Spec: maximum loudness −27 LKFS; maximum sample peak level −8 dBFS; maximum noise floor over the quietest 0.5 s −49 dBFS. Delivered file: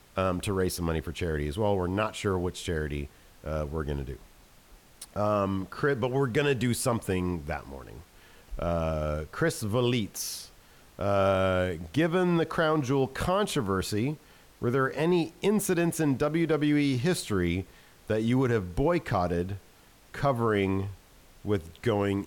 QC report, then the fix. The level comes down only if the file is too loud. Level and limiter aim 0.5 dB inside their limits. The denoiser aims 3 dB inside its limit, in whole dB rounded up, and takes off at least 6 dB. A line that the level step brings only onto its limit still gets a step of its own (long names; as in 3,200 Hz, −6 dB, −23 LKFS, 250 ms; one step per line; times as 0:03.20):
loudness −28.5 LKFS: in spec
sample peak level −15.0 dBFS: in spec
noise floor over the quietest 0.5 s −56 dBFS: in spec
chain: no processing needed